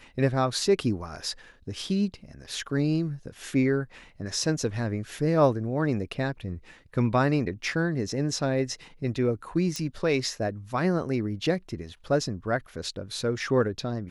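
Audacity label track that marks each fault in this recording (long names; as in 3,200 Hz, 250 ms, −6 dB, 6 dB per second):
9.760000	9.760000	click −18 dBFS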